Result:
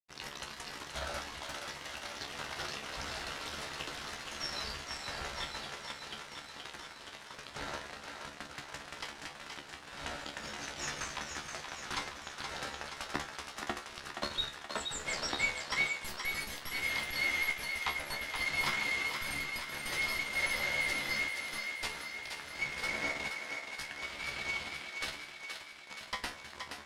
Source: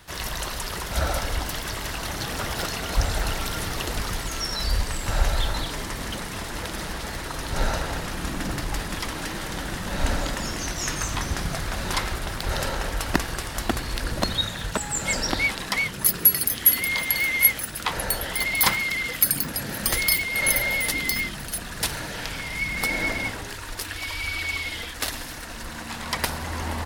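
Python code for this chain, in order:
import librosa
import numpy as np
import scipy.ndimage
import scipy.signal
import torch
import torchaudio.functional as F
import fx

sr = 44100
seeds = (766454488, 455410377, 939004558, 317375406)

y = fx.tilt_eq(x, sr, slope=3.5)
y = fx.fuzz(y, sr, gain_db=18.0, gate_db=-25.0)
y = fx.spacing_loss(y, sr, db_at_10k=23)
y = fx.comb_fb(y, sr, f0_hz=72.0, decay_s=0.22, harmonics='all', damping=0.0, mix_pct=90)
y = fx.echo_thinned(y, sr, ms=474, feedback_pct=63, hz=420.0, wet_db=-5.5)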